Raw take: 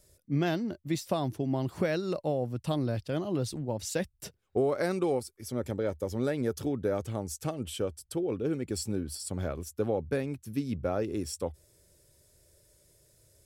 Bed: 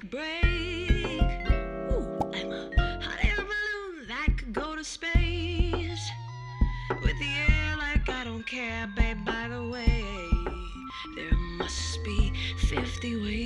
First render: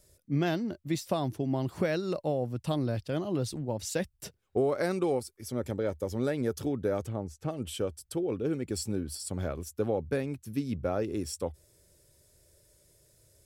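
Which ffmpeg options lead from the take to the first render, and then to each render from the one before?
-filter_complex "[0:a]asplit=3[a][b][c];[a]afade=t=out:st=7.07:d=0.02[d];[b]lowpass=f=1.3k:p=1,afade=t=in:st=7.07:d=0.02,afade=t=out:st=7.49:d=0.02[e];[c]afade=t=in:st=7.49:d=0.02[f];[d][e][f]amix=inputs=3:normalize=0"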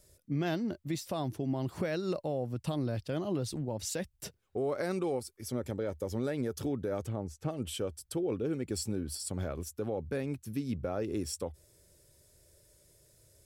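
-af "alimiter=limit=-24dB:level=0:latency=1:release=126"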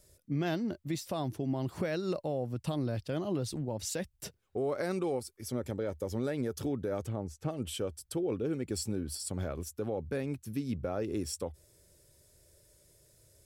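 -af anull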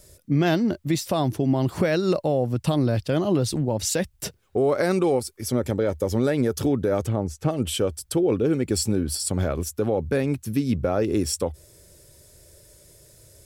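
-af "volume=11.5dB"

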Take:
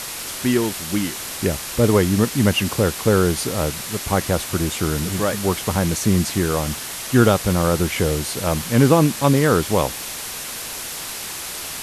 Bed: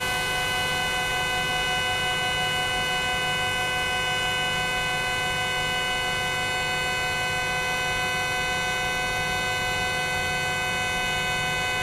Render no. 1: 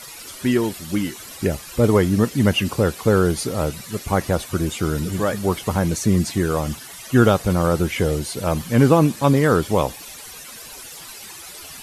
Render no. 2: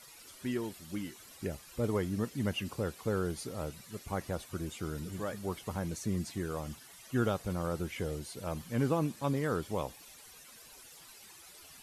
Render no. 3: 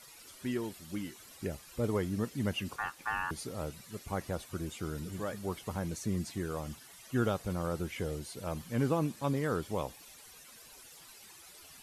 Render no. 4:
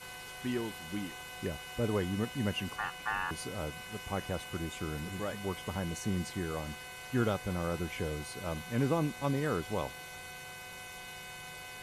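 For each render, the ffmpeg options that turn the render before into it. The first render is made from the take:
-af "afftdn=nr=13:nf=-31"
-af "volume=-16dB"
-filter_complex "[0:a]asettb=1/sr,asplit=3[a][b][c];[a]atrim=end=2.764[d];[b]atrim=start=2.76:end=3.31,asetpts=PTS-STARTPTS,afade=t=in:d=0.004:c=qsin,afade=t=out:st=0.546:d=0.004:c=qsin,aeval=exprs='val(0)*sin(2*PI*1300*n/s)':c=same[e];[c]atrim=start=3.306[f];[d][e]acrossfade=d=0.004:c1=hsin:c2=qsin[g];[g][f]acrossfade=d=0.004:c1=qsin:c2=hsin"
-filter_complex "[1:a]volume=-21dB[a];[0:a][a]amix=inputs=2:normalize=0"

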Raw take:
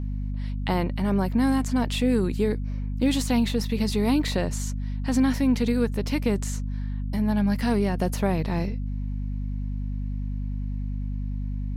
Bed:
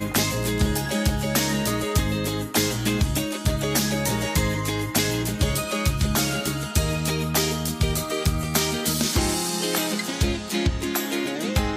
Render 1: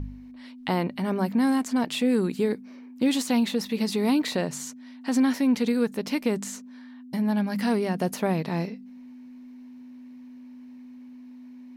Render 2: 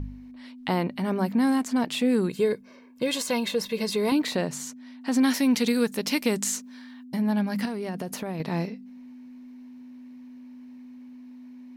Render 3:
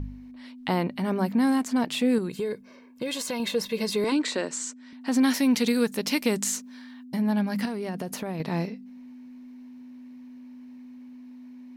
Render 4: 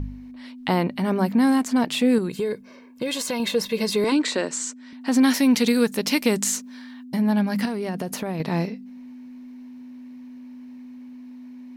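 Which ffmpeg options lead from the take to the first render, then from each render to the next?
-af "bandreject=f=50:t=h:w=4,bandreject=f=100:t=h:w=4,bandreject=f=150:t=h:w=4,bandreject=f=200:t=h:w=4"
-filter_complex "[0:a]asettb=1/sr,asplit=3[a][b][c];[a]atrim=end=2.294[d];[b]atrim=start=2.29:end=4.12,asetpts=PTS-STARTPTS,afade=t=in:d=0.004:c=qsin,afade=t=out:st=1.826:d=0.004:c=qsin,aecho=1:1:1.9:0.65,atrim=end_sample=80703[e];[c]atrim=start=4.116[f];[d][e]acrossfade=d=0.004:c1=hsin:c2=qsin[g];[g][f]acrossfade=d=0.004:c1=qsin:c2=hsin,asettb=1/sr,asplit=3[h][i][j];[h]atrim=end=5.234[k];[i]atrim=start=5.23:end=7.04,asetpts=PTS-STARTPTS,afade=t=in:d=0.004:c=qsin,afade=t=out:st=1.806:d=0.004:c=qsin,highshelf=f=2.3k:g=10[l];[j]atrim=start=7.036[m];[k][l]acrossfade=d=0.004:c1=hsin:c2=qsin[n];[n][m]acrossfade=d=0.004:c1=qsin:c2=hsin,asettb=1/sr,asplit=3[o][p][q];[o]atrim=end=7.654[r];[p]atrim=start=7.65:end=8.4,asetpts=PTS-STARTPTS,afade=t=in:d=0.004:c=qsin,afade=t=out:st=0.746:d=0.004:c=qsin,acompressor=threshold=-27dB:ratio=12:attack=3.2:release=140:knee=1:detection=peak[s];[q]atrim=start=8.396[t];[r][s]acrossfade=d=0.004:c1=hsin:c2=qsin[u];[u][t]acrossfade=d=0.004:c1=qsin:c2=hsin"
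-filter_complex "[0:a]asettb=1/sr,asplit=3[a][b][c];[a]atrim=end=2.184[d];[b]atrim=start=2.18:end=3.4,asetpts=PTS-STARTPTS,afade=t=in:d=0.004:c=qsin,afade=t=out:st=1.216:d=0.004:c=qsin,acompressor=threshold=-28dB:ratio=2.5:attack=3.2:release=140:knee=1:detection=peak[e];[c]atrim=start=3.396[f];[d][e]acrossfade=d=0.004:c1=hsin:c2=qsin[g];[g][f]acrossfade=d=0.004:c1=qsin:c2=hsin,asettb=1/sr,asplit=3[h][i][j];[h]atrim=end=4.044[k];[i]atrim=start=4.04:end=4.93,asetpts=PTS-STARTPTS,afade=t=in:d=0.004:c=qsin,afade=t=out:st=0.886:d=0.004:c=qsin,highpass=f=250:w=0.5412,highpass=f=250:w=1.3066,equalizer=f=730:t=q:w=4:g=-7,equalizer=f=1.5k:t=q:w=4:g=3,equalizer=f=7.8k:t=q:w=4:g=9,lowpass=f=8.4k:w=0.5412,lowpass=f=8.4k:w=1.3066[l];[j]atrim=start=4.926[m];[k][l]acrossfade=d=0.004:c1=hsin:c2=qsin[n];[n][m]acrossfade=d=0.004:c1=qsin:c2=hsin"
-af "volume=4dB"

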